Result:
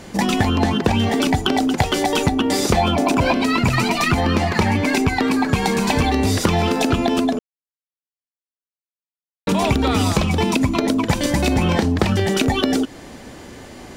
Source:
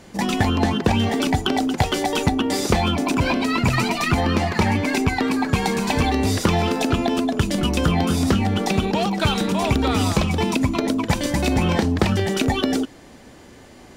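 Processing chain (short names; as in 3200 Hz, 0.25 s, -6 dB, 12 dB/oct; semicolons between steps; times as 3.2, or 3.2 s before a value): 2.77–3.33 bell 660 Hz +7 dB 0.94 oct; 7.39–9.47 mute; compressor 2:1, threshold -25 dBFS, peak gain reduction 7.5 dB; gain +7 dB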